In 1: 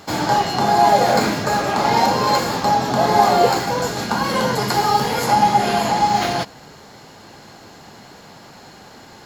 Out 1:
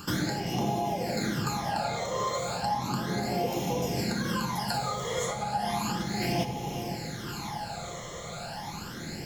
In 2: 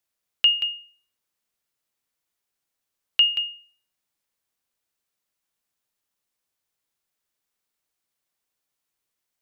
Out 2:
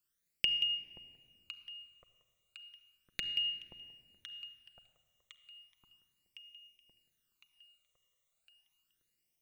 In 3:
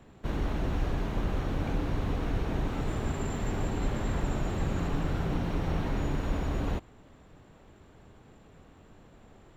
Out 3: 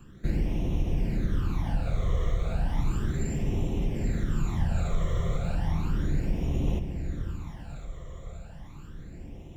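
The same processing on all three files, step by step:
compressor 6:1, threshold -26 dBFS; on a send: echo with dull and thin repeats by turns 0.529 s, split 1100 Hz, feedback 72%, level -10.5 dB; on the sum: phaser stages 12, 0.34 Hz, lowest notch 260–1500 Hz; high shelf 5400 Hz +6 dB; vocal rider within 3 dB 0.5 s; low shelf 370 Hz +4 dB; shoebox room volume 4000 m³, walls mixed, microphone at 0.83 m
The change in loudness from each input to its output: -14.0, -14.5, +2.0 LU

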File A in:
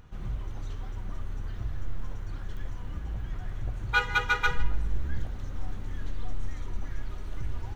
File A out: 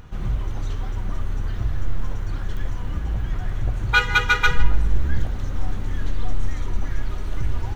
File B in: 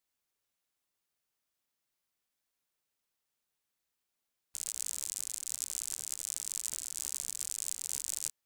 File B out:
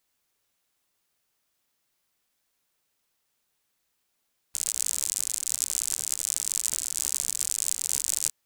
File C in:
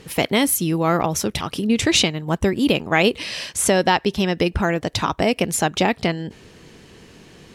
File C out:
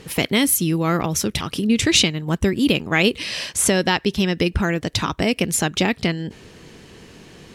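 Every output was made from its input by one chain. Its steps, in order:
dynamic EQ 750 Hz, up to -8 dB, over -35 dBFS, Q 0.99; normalise peaks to -3 dBFS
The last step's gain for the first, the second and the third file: +9.5, +9.5, +2.0 dB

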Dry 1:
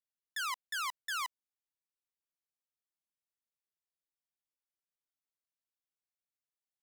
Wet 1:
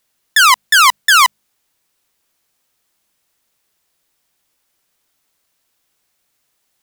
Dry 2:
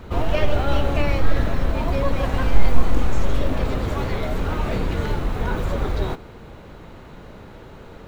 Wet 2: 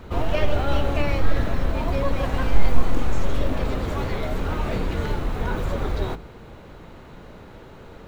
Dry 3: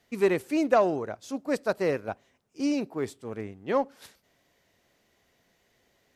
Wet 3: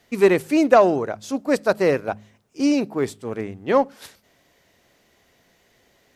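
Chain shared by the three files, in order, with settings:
de-hum 52.72 Hz, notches 4; normalise peaks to -3 dBFS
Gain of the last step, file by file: +27.5, -1.5, +8.0 dB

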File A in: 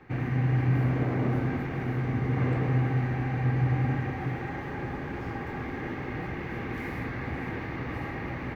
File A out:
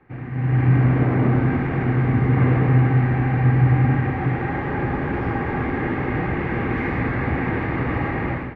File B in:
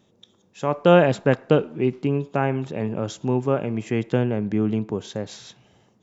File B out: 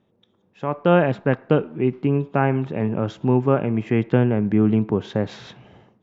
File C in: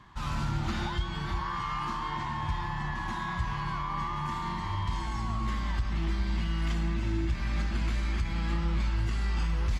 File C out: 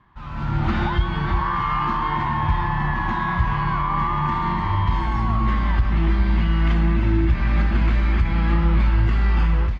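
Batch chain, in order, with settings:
LPF 2400 Hz 12 dB/oct; dynamic EQ 540 Hz, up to -3 dB, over -38 dBFS, Q 1.5; AGC gain up to 15 dB; gain -3.5 dB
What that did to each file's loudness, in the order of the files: +9.5, +1.5, +11.0 LU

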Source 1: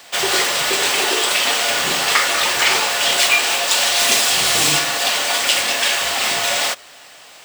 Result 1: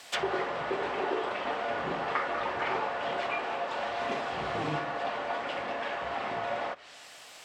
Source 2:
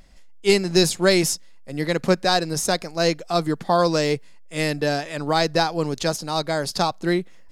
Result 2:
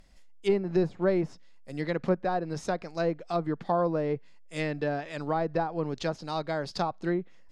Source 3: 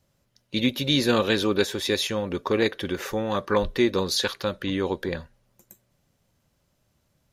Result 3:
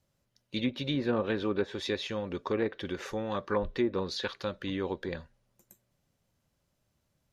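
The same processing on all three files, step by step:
treble ducked by the level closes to 1100 Hz, closed at -16 dBFS; gain -7 dB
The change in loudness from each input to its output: -17.5, -8.5, -8.0 LU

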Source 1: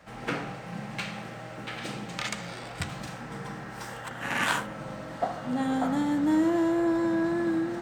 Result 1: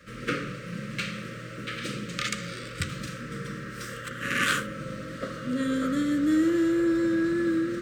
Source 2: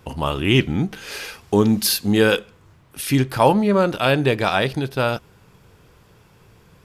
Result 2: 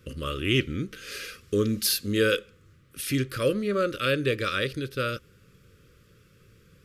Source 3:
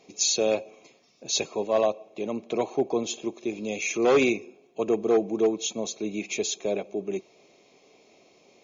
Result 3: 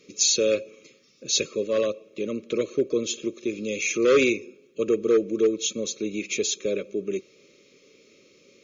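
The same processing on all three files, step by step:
Chebyshev band-stop 550–1200 Hz, order 3; dynamic EQ 180 Hz, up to -8 dB, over -37 dBFS, Q 1.7; normalise peaks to -9 dBFS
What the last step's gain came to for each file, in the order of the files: +3.5, -5.0, +3.5 dB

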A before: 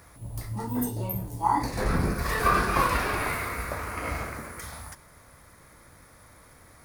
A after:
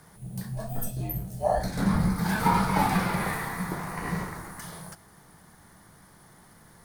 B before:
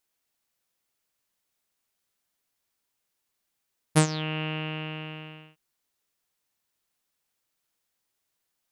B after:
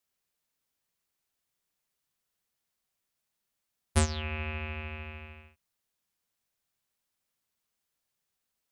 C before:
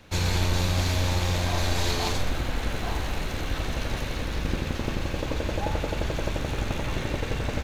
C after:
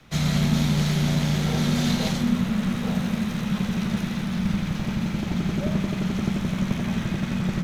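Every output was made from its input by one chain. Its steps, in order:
frequency shift -240 Hz; dynamic EQ 180 Hz, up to +5 dB, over -37 dBFS, Q 2.5; normalise peaks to -9 dBFS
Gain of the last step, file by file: -1.0, -3.5, 0.0 dB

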